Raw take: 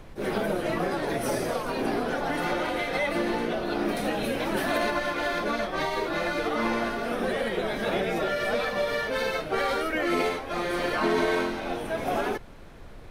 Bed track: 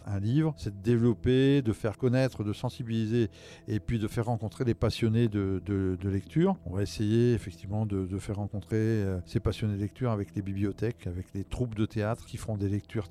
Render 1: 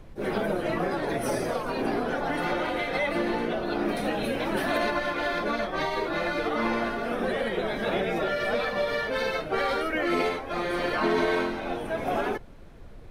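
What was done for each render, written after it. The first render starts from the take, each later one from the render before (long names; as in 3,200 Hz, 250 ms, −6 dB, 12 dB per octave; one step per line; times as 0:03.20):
broadband denoise 6 dB, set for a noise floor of −44 dBFS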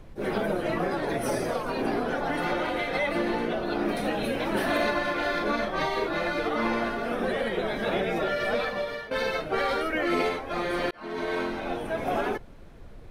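0:04.50–0:06.07: double-tracking delay 38 ms −7 dB
0:08.60–0:09.11: fade out, to −12.5 dB
0:10.91–0:11.58: fade in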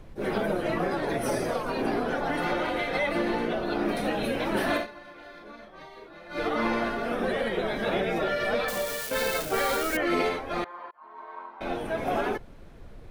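0:04.74–0:06.42: duck −18.5 dB, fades 0.13 s
0:08.68–0:09.97: spike at every zero crossing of −24.5 dBFS
0:10.64–0:11.61: resonant band-pass 1,000 Hz, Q 6.3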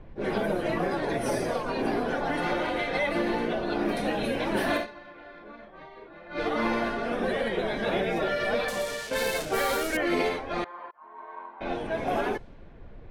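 notch filter 1,300 Hz, Q 14
low-pass that shuts in the quiet parts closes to 2,200 Hz, open at −23 dBFS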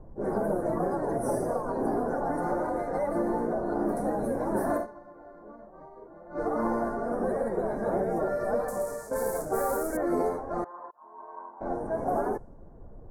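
Chebyshev band-stop filter 890–8,900 Hz, order 2
dynamic equaliser 1,600 Hz, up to +4 dB, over −49 dBFS, Q 1.5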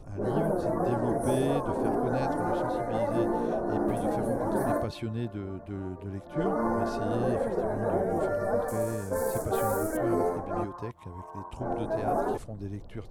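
mix in bed track −7.5 dB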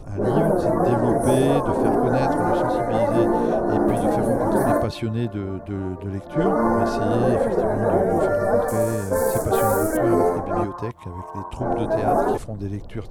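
level +8.5 dB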